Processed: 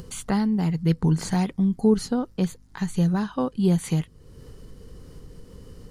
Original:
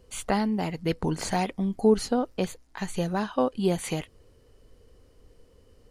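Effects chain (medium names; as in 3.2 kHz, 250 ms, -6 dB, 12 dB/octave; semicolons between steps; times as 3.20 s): upward compressor, threshold -31 dBFS; fifteen-band graphic EQ 160 Hz +11 dB, 630 Hz -7 dB, 2.5 kHz -5 dB; hum 50 Hz, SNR 31 dB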